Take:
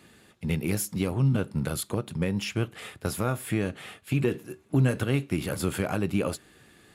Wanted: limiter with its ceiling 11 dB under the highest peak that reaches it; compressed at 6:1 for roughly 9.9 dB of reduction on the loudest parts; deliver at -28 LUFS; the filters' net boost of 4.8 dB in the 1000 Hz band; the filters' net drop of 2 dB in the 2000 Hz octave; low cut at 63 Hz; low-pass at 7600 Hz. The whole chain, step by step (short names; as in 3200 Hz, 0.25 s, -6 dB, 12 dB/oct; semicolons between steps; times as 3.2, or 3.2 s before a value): HPF 63 Hz; LPF 7600 Hz; bell 1000 Hz +8.5 dB; bell 2000 Hz -6 dB; compressor 6:1, threshold -29 dBFS; gain +10 dB; limiter -16.5 dBFS